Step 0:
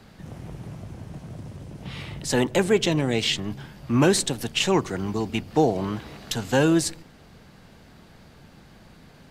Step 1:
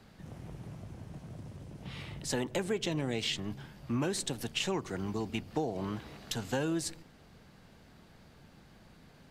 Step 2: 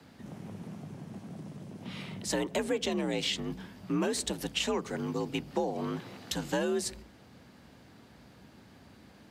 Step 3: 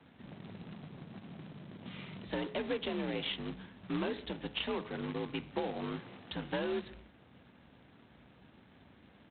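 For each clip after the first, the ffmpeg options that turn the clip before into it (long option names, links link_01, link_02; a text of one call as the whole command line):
ffmpeg -i in.wav -af "acompressor=threshold=-21dB:ratio=6,volume=-7.5dB" out.wav
ffmpeg -i in.wav -af "afreqshift=51,volume=2dB" out.wav
ffmpeg -i in.wav -af "bandreject=frequency=105.4:width_type=h:width=4,bandreject=frequency=210.8:width_type=h:width=4,bandreject=frequency=316.2:width_type=h:width=4,bandreject=frequency=421.6:width_type=h:width=4,bandreject=frequency=527:width_type=h:width=4,bandreject=frequency=632.4:width_type=h:width=4,bandreject=frequency=737.8:width_type=h:width=4,bandreject=frequency=843.2:width_type=h:width=4,bandreject=frequency=948.6:width_type=h:width=4,bandreject=frequency=1054:width_type=h:width=4,bandreject=frequency=1159.4:width_type=h:width=4,bandreject=frequency=1264.8:width_type=h:width=4,bandreject=frequency=1370.2:width_type=h:width=4,bandreject=frequency=1475.6:width_type=h:width=4,bandreject=frequency=1581:width_type=h:width=4,bandreject=frequency=1686.4:width_type=h:width=4,bandreject=frequency=1791.8:width_type=h:width=4,bandreject=frequency=1897.2:width_type=h:width=4,bandreject=frequency=2002.6:width_type=h:width=4,bandreject=frequency=2108:width_type=h:width=4,bandreject=frequency=2213.4:width_type=h:width=4,bandreject=frequency=2318.8:width_type=h:width=4,bandreject=frequency=2424.2:width_type=h:width=4,bandreject=frequency=2529.6:width_type=h:width=4,bandreject=frequency=2635:width_type=h:width=4,bandreject=frequency=2740.4:width_type=h:width=4,bandreject=frequency=2845.8:width_type=h:width=4,bandreject=frequency=2951.2:width_type=h:width=4,bandreject=frequency=3056.6:width_type=h:width=4,aresample=8000,acrusher=bits=2:mode=log:mix=0:aa=0.000001,aresample=44100,volume=-5dB" out.wav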